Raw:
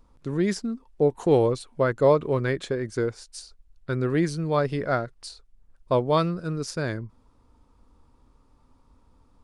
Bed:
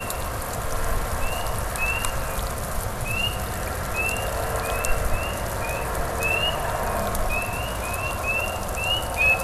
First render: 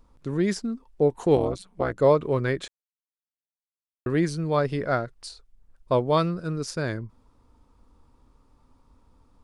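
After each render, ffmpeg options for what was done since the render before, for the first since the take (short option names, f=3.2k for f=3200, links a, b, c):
-filter_complex "[0:a]asplit=3[a][b][c];[a]afade=t=out:st=1.35:d=0.02[d];[b]tremolo=f=190:d=0.919,afade=t=in:st=1.35:d=0.02,afade=t=out:st=1.96:d=0.02[e];[c]afade=t=in:st=1.96:d=0.02[f];[d][e][f]amix=inputs=3:normalize=0,asplit=3[g][h][i];[g]atrim=end=2.68,asetpts=PTS-STARTPTS,afade=t=out:st=2.676:d=0.004:c=hsin[j];[h]atrim=start=2.68:end=4.06,asetpts=PTS-STARTPTS,volume=0[k];[i]atrim=start=4.06,asetpts=PTS-STARTPTS,afade=t=in:d=0.004:c=hsin[l];[j][k][l]concat=n=3:v=0:a=1"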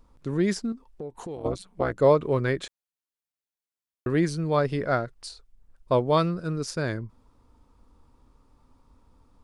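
-filter_complex "[0:a]asettb=1/sr,asplit=3[a][b][c];[a]atrim=end=0.724[d];[b]atrim=start=0.72:end=1.45,asetpts=PTS-STARTPTS,afade=t=in:d=0.004:c=qsin,afade=t=out:st=0.726:d=0.004:c=qsin,acompressor=threshold=-36dB:ratio=4:attack=3.2:release=140:knee=1:detection=peak[e];[c]atrim=start=1.446[f];[d][e]acrossfade=d=0.004:c1=hsin:c2=qsin[g];[g][f]acrossfade=d=0.004:c1=qsin:c2=hsin"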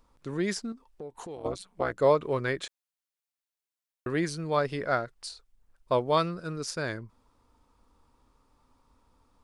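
-af "lowshelf=f=430:g=-8.5"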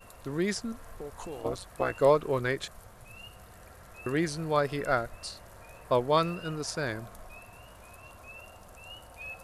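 -filter_complex "[1:a]volume=-23dB[a];[0:a][a]amix=inputs=2:normalize=0"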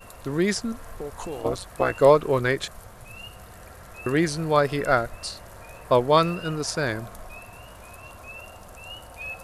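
-af "volume=6.5dB"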